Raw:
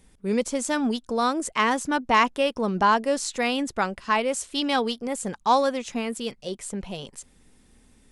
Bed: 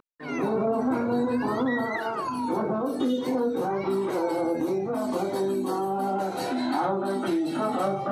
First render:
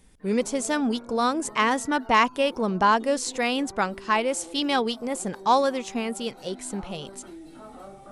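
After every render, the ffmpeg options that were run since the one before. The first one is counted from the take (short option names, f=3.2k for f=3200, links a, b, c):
-filter_complex "[1:a]volume=-17.5dB[a];[0:a][a]amix=inputs=2:normalize=0"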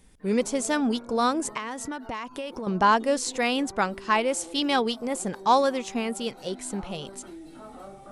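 -filter_complex "[0:a]asettb=1/sr,asplit=3[a][b][c];[a]atrim=end=1.574[d];[b]atrim=start=1.57:end=2.67,asetpts=PTS-STARTPTS,afade=t=in:d=0.004:c=qsin,afade=t=out:st=1.096:d=0.004:c=qsin,acompressor=threshold=-29dB:ratio=16:attack=3.2:release=140:knee=1:detection=peak[e];[c]atrim=start=2.666[f];[d][e]acrossfade=d=0.004:c1=hsin:c2=qsin[g];[g][f]acrossfade=d=0.004:c1=qsin:c2=hsin"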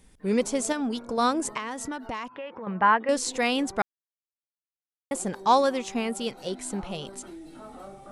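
-filter_complex "[0:a]asettb=1/sr,asplit=3[a][b][c];[a]atrim=end=0.724[d];[b]atrim=start=0.72:end=1.18,asetpts=PTS-STARTPTS,afade=t=in:d=0.004:c=qsin,afade=t=out:st=0.456:d=0.004:c=qsin,acompressor=threshold=-25dB:ratio=6:attack=3.2:release=140:knee=1:detection=peak[e];[c]atrim=start=1.176[f];[d][e]acrossfade=d=0.004:c1=hsin:c2=qsin[g];[g][f]acrossfade=d=0.004:c1=qsin:c2=hsin,asettb=1/sr,asplit=3[h][i][j];[h]atrim=end=2.284[k];[i]atrim=start=2.28:end=3.09,asetpts=PTS-STARTPTS,afade=t=in:d=0.004:c=qsin,afade=t=out:st=0.806:d=0.004:c=qsin,highpass=130,equalizer=f=150:t=q:w=4:g=-7,equalizer=f=260:t=q:w=4:g=-9,equalizer=f=370:t=q:w=4:g=-9,equalizer=f=660:t=q:w=4:g=-4,equalizer=f=1.9k:t=q:w=4:g=6,lowpass=f=2.5k:w=0.5412,lowpass=f=2.5k:w=1.3066[l];[j]atrim=start=3.086[m];[k][l]acrossfade=d=0.004:c1=hsin:c2=qsin[n];[n][m]acrossfade=d=0.004:c1=qsin:c2=hsin,asplit=3[o][p][q];[o]atrim=end=3.82,asetpts=PTS-STARTPTS,afade=t=out:st=3.816:d=0.004:c=hsin[r];[p]atrim=start=3.82:end=5.11,asetpts=PTS-STARTPTS,volume=0[s];[q]atrim=start=5.11,asetpts=PTS-STARTPTS,afade=t=in:d=0.004:c=hsin[t];[r][s][t]concat=n=3:v=0:a=1"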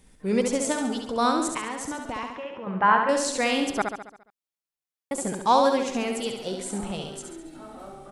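-af "aecho=1:1:69|138|207|276|345|414|483:0.562|0.304|0.164|0.0885|0.0478|0.0258|0.0139"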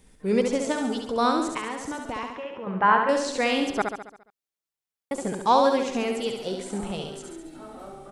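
-filter_complex "[0:a]acrossover=split=5800[a][b];[b]acompressor=threshold=-45dB:ratio=4:attack=1:release=60[c];[a][c]amix=inputs=2:normalize=0,equalizer=f=430:w=4.8:g=3.5"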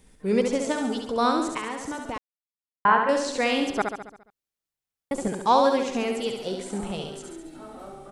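-filter_complex "[0:a]asettb=1/sr,asplit=3[a][b][c];[a]atrim=end=4.004[d];[b]atrim=start=4:end=5.28,asetpts=PTS-STARTPTS,afade=t=in:d=0.004:c=qsin,afade=t=out:st=1.276:d=0.004:c=qsin,lowshelf=f=150:g=10.5[e];[c]atrim=start=5.276[f];[d][e]acrossfade=d=0.004:c1=hsin:c2=qsin[g];[g][f]acrossfade=d=0.004:c1=qsin:c2=hsin,asplit=3[h][i][j];[h]atrim=end=2.18,asetpts=PTS-STARTPTS,afade=t=out:st=2.176:d=0.004:c=hsin[k];[i]atrim=start=2.18:end=2.85,asetpts=PTS-STARTPTS,volume=0[l];[j]atrim=start=2.85,asetpts=PTS-STARTPTS,afade=t=in:d=0.004:c=hsin[m];[k][l][m]concat=n=3:v=0:a=1"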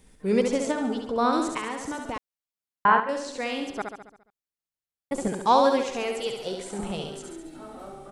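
-filter_complex "[0:a]asettb=1/sr,asplit=3[a][b][c];[a]atrim=end=0.714[d];[b]atrim=start=0.71:end=1.33,asetpts=PTS-STARTPTS,afade=t=in:d=0.004:c=qsin,afade=t=out:st=0.616:d=0.004:c=qsin,highshelf=f=3.3k:g=-10.5[e];[c]atrim=start=1.326[f];[d][e]acrossfade=d=0.004:c1=hsin:c2=qsin[g];[g][f]acrossfade=d=0.004:c1=qsin:c2=hsin,asettb=1/sr,asplit=3[h][i][j];[h]atrim=end=5.814[k];[i]atrim=start=5.81:end=6.79,asetpts=PTS-STARTPTS,afade=t=in:d=0.004:c=qsin,afade=t=out:st=0.976:d=0.004:c=qsin,equalizer=f=240:w=2.3:g=-10[l];[j]atrim=start=6.786[m];[k][l]acrossfade=d=0.004:c1=hsin:c2=qsin[n];[n][m]acrossfade=d=0.004:c1=qsin:c2=hsin,asplit=3[o][p][q];[o]atrim=end=3.002[r];[p]atrim=start=2.998:end=5.122,asetpts=PTS-STARTPTS,volume=-6.5dB[s];[q]atrim=start=5.118[t];[r][s]acrossfade=d=0.004:c1=hsin:c2=hsin[u];[u][t]acrossfade=d=0.004:c1=hsin:c2=hsin"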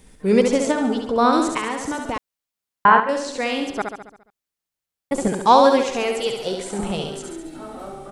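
-af "volume=6.5dB,alimiter=limit=-2dB:level=0:latency=1"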